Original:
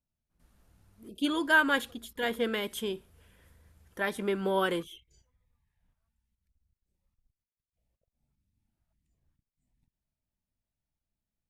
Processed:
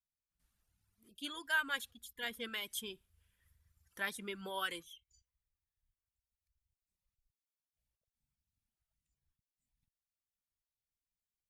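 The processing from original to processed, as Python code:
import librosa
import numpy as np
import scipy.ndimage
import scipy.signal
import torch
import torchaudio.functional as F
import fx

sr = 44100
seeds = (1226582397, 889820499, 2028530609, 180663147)

y = fx.tone_stack(x, sr, knobs='5-5-5')
y = fx.rider(y, sr, range_db=4, speed_s=2.0)
y = fx.dereverb_blind(y, sr, rt60_s=1.9)
y = F.gain(torch.from_numpy(y), 3.5).numpy()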